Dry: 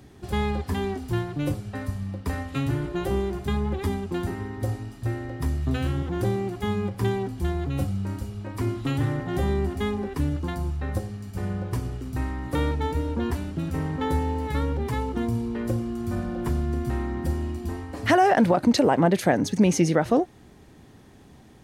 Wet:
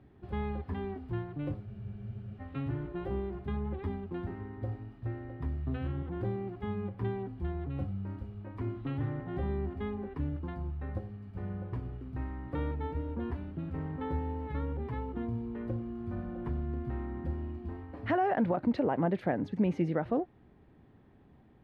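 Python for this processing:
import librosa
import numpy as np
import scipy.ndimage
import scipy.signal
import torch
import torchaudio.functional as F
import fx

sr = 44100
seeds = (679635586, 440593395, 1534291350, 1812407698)

y = fx.air_absorb(x, sr, metres=470.0)
y = fx.spec_freeze(y, sr, seeds[0], at_s=1.68, hold_s=0.73)
y = F.gain(torch.from_numpy(y), -8.5).numpy()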